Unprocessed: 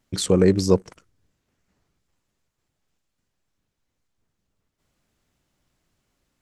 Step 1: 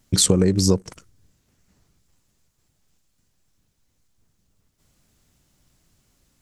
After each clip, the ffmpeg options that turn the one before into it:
ffmpeg -i in.wav -af "acompressor=threshold=-20dB:ratio=10,bass=frequency=250:gain=6,treble=frequency=4000:gain=8,volume=4dB" out.wav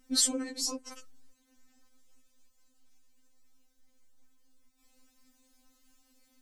ffmpeg -i in.wav -af "acompressor=threshold=-24dB:ratio=2,afftfilt=real='re*3.46*eq(mod(b,12),0)':imag='im*3.46*eq(mod(b,12),0)':win_size=2048:overlap=0.75" out.wav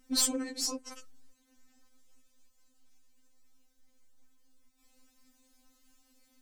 ffmpeg -i in.wav -af "aeval=exprs='clip(val(0),-1,0.0501)':channel_layout=same" out.wav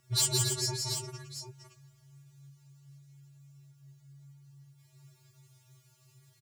ffmpeg -i in.wav -filter_complex "[0:a]afreqshift=-140,asplit=2[link_01][link_02];[link_02]aecho=0:1:149|169|279|736:0.119|0.668|0.473|0.316[link_03];[link_01][link_03]amix=inputs=2:normalize=0" out.wav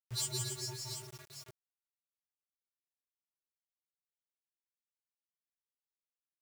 ffmpeg -i in.wav -af "acrusher=bits=6:mix=0:aa=0.000001,volume=-9dB" out.wav

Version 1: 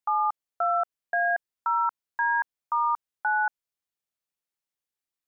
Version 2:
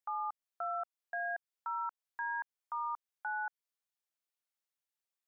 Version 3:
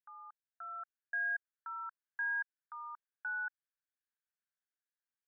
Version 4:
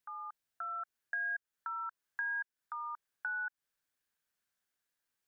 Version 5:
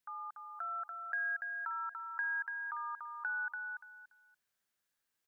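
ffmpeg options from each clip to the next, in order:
ffmpeg -i in.wav -af "highpass=490,alimiter=level_in=3dB:limit=-24dB:level=0:latency=1:release=163,volume=-3dB,volume=-3.5dB" out.wav
ffmpeg -i in.wav -af "dynaudnorm=framelen=430:gausssize=3:maxgain=6.5dB,bandpass=frequency=1600:width_type=q:width=6.5:csg=0,volume=-1.5dB" out.wav
ffmpeg -i in.wav -af "acompressor=threshold=-48dB:ratio=2.5,volume=8.5dB" out.wav
ffmpeg -i in.wav -af "aecho=1:1:288|576|864:0.562|0.129|0.0297" out.wav

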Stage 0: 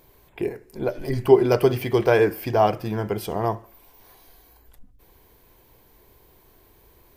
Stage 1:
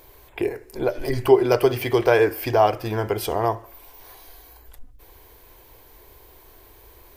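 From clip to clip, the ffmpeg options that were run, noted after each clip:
ffmpeg -i in.wav -filter_complex "[0:a]equalizer=frequency=180:width_type=o:width=0.86:gain=-14,asplit=2[link_01][link_02];[link_02]acompressor=threshold=-29dB:ratio=6,volume=1.5dB[link_03];[link_01][link_03]amix=inputs=2:normalize=0" out.wav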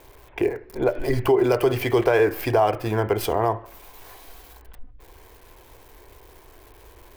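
ffmpeg -i in.wav -filter_complex "[0:a]acrossover=split=300|3300[link_01][link_02][link_03];[link_03]acrusher=bits=5:dc=4:mix=0:aa=0.000001[link_04];[link_01][link_02][link_04]amix=inputs=3:normalize=0,alimiter=level_in=10.5dB:limit=-1dB:release=50:level=0:latency=1,volume=-8.5dB" out.wav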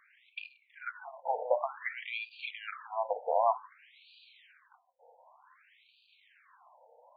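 ffmpeg -i in.wav -af "afftfilt=real='re*between(b*sr/1024,650*pow(3400/650,0.5+0.5*sin(2*PI*0.54*pts/sr))/1.41,650*pow(3400/650,0.5+0.5*sin(2*PI*0.54*pts/sr))*1.41)':imag='im*between(b*sr/1024,650*pow(3400/650,0.5+0.5*sin(2*PI*0.54*pts/sr))/1.41,650*pow(3400/650,0.5+0.5*sin(2*PI*0.54*pts/sr))*1.41)':win_size=1024:overlap=0.75,volume=-2.5dB" out.wav

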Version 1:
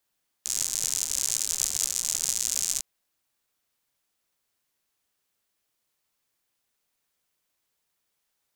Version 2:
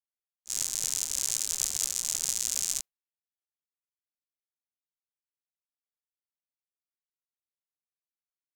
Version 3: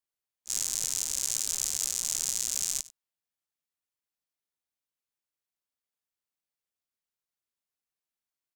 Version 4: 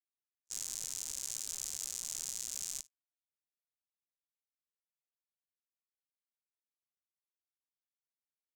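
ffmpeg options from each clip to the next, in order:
ffmpeg -i in.wav -af "agate=range=-33dB:threshold=-29dB:ratio=3:detection=peak,volume=-2.5dB" out.wav
ffmpeg -i in.wav -af "aecho=1:1:94:0.0841,alimiter=limit=-11.5dB:level=0:latency=1:release=32,acontrast=70,volume=-4dB" out.wav
ffmpeg -i in.wav -af "agate=range=-41dB:threshold=-36dB:ratio=16:detection=peak,alimiter=limit=-19dB:level=0:latency=1:release=286,volume=-1.5dB" out.wav

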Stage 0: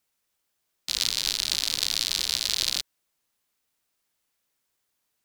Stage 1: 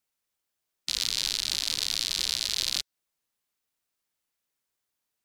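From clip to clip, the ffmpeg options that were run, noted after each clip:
ffmpeg -i in.wav -af "afftdn=noise_reduction=12:noise_floor=-46,alimiter=limit=-15dB:level=0:latency=1:release=168,volume=6dB" out.wav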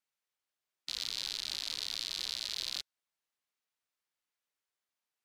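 ffmpeg -i in.wav -filter_complex "[0:a]asplit=2[link_01][link_02];[link_02]highpass=frequency=720:poles=1,volume=9dB,asoftclip=type=tanh:threshold=-8.5dB[link_03];[link_01][link_03]amix=inputs=2:normalize=0,lowpass=frequency=3900:poles=1,volume=-6dB,volume=-8dB" out.wav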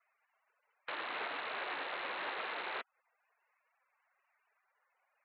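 ffmpeg -i in.wav -filter_complex "[0:a]asplit=2[link_01][link_02];[link_02]highpass=frequency=720:poles=1,volume=29dB,asoftclip=type=tanh:threshold=-19dB[link_03];[link_01][link_03]amix=inputs=2:normalize=0,lowpass=frequency=1900:poles=1,volume=-6dB,highpass=frequency=530:width_type=q:width=0.5412,highpass=frequency=530:width_type=q:width=1.307,lowpass=frequency=3100:width_type=q:width=0.5176,lowpass=frequency=3100:width_type=q:width=0.7071,lowpass=frequency=3100:width_type=q:width=1.932,afreqshift=-160,afftfilt=real='re*gte(hypot(re,im),0.000316)':imag='im*gte(hypot(re,im),0.000316)':win_size=1024:overlap=0.75" out.wav

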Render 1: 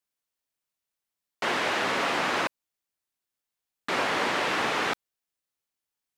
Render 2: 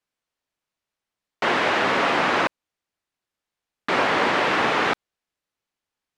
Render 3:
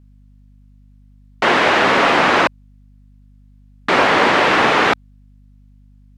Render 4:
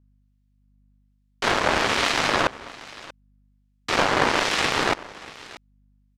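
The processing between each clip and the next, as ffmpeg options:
ffmpeg -i in.wav -af "aemphasis=mode=reproduction:type=50fm,volume=6.5dB" out.wav
ffmpeg -i in.wav -af "aeval=exprs='val(0)+0.00224*(sin(2*PI*50*n/s)+sin(2*PI*2*50*n/s)/2+sin(2*PI*3*50*n/s)/3+sin(2*PI*4*50*n/s)/4+sin(2*PI*5*50*n/s)/5)':channel_layout=same,volume=7dB" out.wav
ffmpeg -i in.wav -filter_complex "[0:a]aeval=exprs='0.891*(cos(1*acos(clip(val(0)/0.891,-1,1)))-cos(1*PI/2))+0.158*(cos(3*acos(clip(val(0)/0.891,-1,1)))-cos(3*PI/2))+0.0891*(cos(7*acos(clip(val(0)/0.891,-1,1)))-cos(7*PI/2))':channel_layout=same,aecho=1:1:635:0.119,acrossover=split=1900[link_01][link_02];[link_01]aeval=exprs='val(0)*(1-0.5/2+0.5/2*cos(2*PI*1.2*n/s))':channel_layout=same[link_03];[link_02]aeval=exprs='val(0)*(1-0.5/2-0.5/2*cos(2*PI*1.2*n/s))':channel_layout=same[link_04];[link_03][link_04]amix=inputs=2:normalize=0" out.wav

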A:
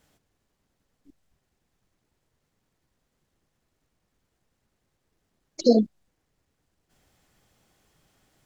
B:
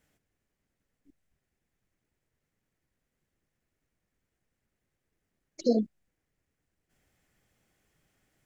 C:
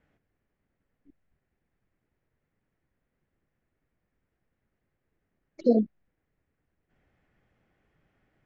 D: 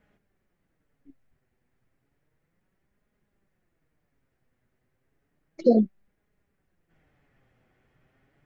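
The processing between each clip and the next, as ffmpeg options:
ffmpeg -i in.wav -af "equalizer=frequency=1000:width_type=o:width=1:gain=-5,equalizer=frequency=2000:width_type=o:width=1:gain=5,equalizer=frequency=4000:width_type=o:width=1:gain=-5,volume=-6.5dB" out.wav
ffmpeg -i in.wav -af "lowpass=2100,volume=3.5dB" out.wav
ffmpeg -i in.wav -af "flanger=delay=4.8:depth=3.2:regen=50:speed=0.32:shape=sinusoidal,volume=8dB" out.wav

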